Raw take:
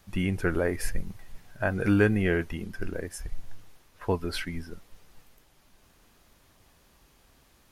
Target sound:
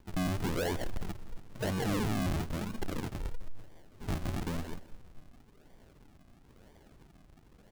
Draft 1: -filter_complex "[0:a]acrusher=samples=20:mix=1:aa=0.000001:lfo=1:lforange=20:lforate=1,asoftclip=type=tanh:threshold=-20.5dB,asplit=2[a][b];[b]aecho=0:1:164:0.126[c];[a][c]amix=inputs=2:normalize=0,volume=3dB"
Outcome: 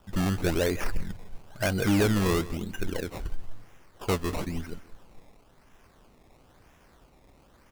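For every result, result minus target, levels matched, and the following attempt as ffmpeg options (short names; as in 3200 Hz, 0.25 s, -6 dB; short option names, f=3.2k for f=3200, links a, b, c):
decimation with a swept rate: distortion -9 dB; soft clip: distortion -9 dB
-filter_complex "[0:a]acrusher=samples=65:mix=1:aa=0.000001:lfo=1:lforange=65:lforate=1,asoftclip=type=tanh:threshold=-20.5dB,asplit=2[a][b];[b]aecho=0:1:164:0.126[c];[a][c]amix=inputs=2:normalize=0,volume=3dB"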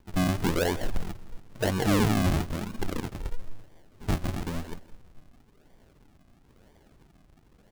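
soft clip: distortion -8 dB
-filter_complex "[0:a]acrusher=samples=65:mix=1:aa=0.000001:lfo=1:lforange=65:lforate=1,asoftclip=type=tanh:threshold=-32dB,asplit=2[a][b];[b]aecho=0:1:164:0.126[c];[a][c]amix=inputs=2:normalize=0,volume=3dB"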